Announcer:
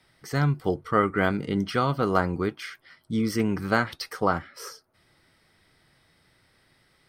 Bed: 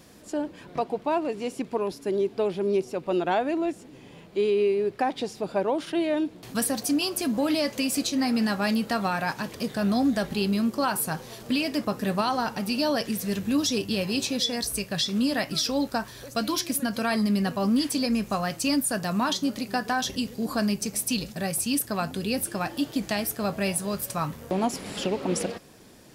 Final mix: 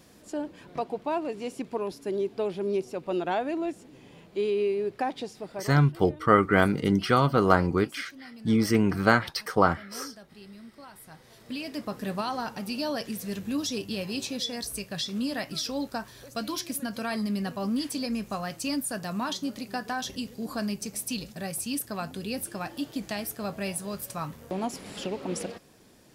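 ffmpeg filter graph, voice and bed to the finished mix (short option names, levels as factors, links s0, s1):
-filter_complex "[0:a]adelay=5350,volume=1.33[s0];[1:a]volume=4.73,afade=t=out:st=5.08:d=0.77:silence=0.112202,afade=t=in:st=11.03:d=0.98:silence=0.141254[s1];[s0][s1]amix=inputs=2:normalize=0"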